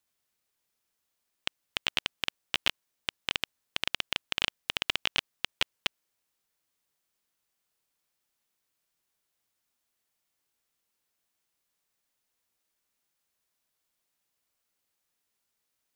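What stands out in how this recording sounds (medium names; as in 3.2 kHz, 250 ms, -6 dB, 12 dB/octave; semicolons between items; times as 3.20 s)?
noise floor -81 dBFS; spectral tilt -0.5 dB/octave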